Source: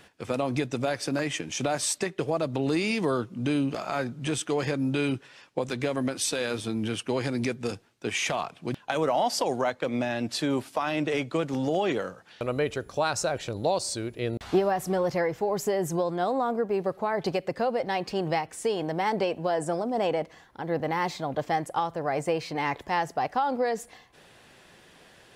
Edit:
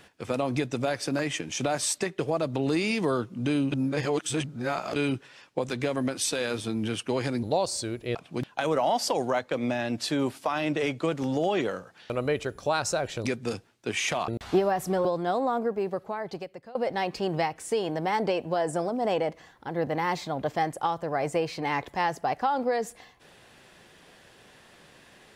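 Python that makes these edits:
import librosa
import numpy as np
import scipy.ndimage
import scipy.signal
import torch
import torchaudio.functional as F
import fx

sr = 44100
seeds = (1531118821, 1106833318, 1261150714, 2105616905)

y = fx.edit(x, sr, fx.reverse_span(start_s=3.72, length_s=1.24),
    fx.swap(start_s=7.43, length_s=1.03, other_s=13.56, other_length_s=0.72),
    fx.cut(start_s=15.05, length_s=0.93),
    fx.fade_out_to(start_s=16.51, length_s=1.17, floor_db=-22.0), tone=tone)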